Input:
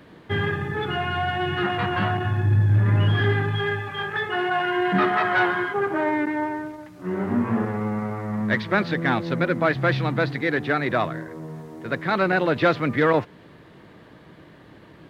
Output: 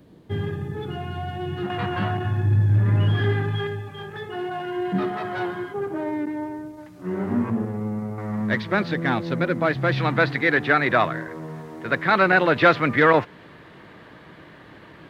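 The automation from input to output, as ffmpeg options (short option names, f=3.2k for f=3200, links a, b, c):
-af "asetnsamples=n=441:p=0,asendcmd='1.7 equalizer g -4.5;3.67 equalizer g -12.5;6.77 equalizer g -3;7.5 equalizer g -12;8.18 equalizer g -1.5;9.97 equalizer g 6',equalizer=f=1.7k:t=o:w=2.6:g=-14"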